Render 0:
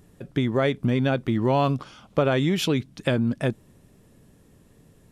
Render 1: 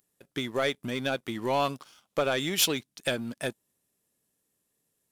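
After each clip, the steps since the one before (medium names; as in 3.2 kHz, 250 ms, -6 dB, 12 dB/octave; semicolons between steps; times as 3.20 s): RIAA curve recording; waveshaping leveller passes 2; upward expansion 1.5:1, over -33 dBFS; trim -7.5 dB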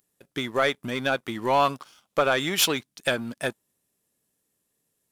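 dynamic bell 1.2 kHz, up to +7 dB, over -42 dBFS, Q 0.8; trim +1.5 dB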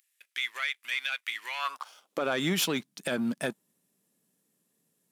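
compression 6:1, threshold -24 dBFS, peak gain reduction 8 dB; high-pass sweep 2.2 kHz -> 180 Hz, 1.54–2.29 s; peak limiter -19.5 dBFS, peak gain reduction 9 dB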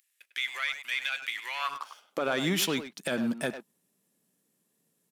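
speakerphone echo 100 ms, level -8 dB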